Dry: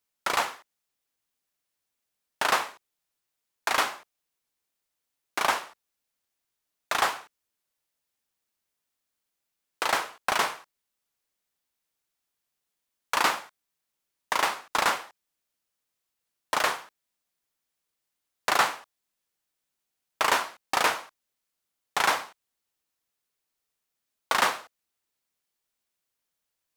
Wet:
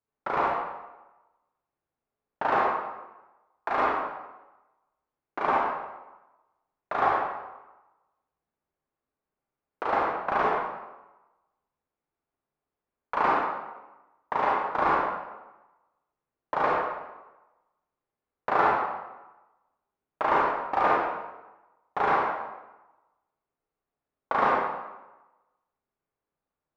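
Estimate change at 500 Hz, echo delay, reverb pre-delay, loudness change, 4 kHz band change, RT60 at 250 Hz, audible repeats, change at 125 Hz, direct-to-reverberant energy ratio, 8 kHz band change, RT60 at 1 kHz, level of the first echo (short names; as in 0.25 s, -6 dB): +5.5 dB, none, 29 ms, 0.0 dB, -15.5 dB, 1.1 s, none, +6.0 dB, -4.5 dB, under -25 dB, 1.1 s, none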